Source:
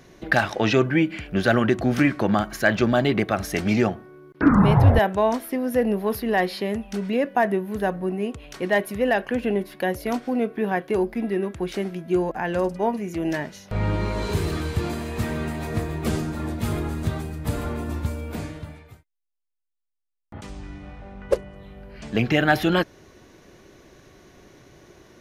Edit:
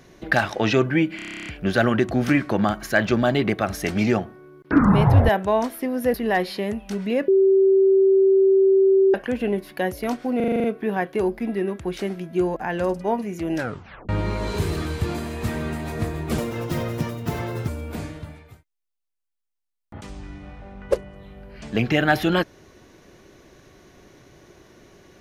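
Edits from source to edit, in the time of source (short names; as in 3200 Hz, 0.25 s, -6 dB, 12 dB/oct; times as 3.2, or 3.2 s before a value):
1.16 stutter 0.03 s, 11 plays
5.84–6.17 cut
7.31–9.17 bleep 386 Hz -12.5 dBFS
10.39 stutter 0.04 s, 8 plays
13.31 tape stop 0.53 s
16.13–18.08 speed 150%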